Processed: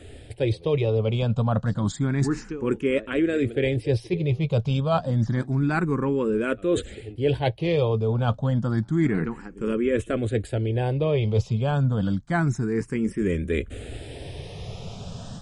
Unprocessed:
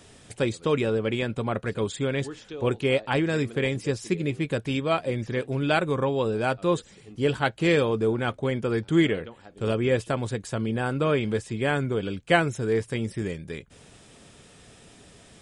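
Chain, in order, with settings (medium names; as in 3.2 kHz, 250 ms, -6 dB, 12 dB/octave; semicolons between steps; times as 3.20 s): peaking EQ 5.6 kHz +4 dB 1.8 oct; level rider gain up to 7.5 dB; tilt EQ -2.5 dB/octave; reverse; compression 6:1, threshold -23 dBFS, peak gain reduction 17 dB; reverse; barber-pole phaser +0.29 Hz; trim +5.5 dB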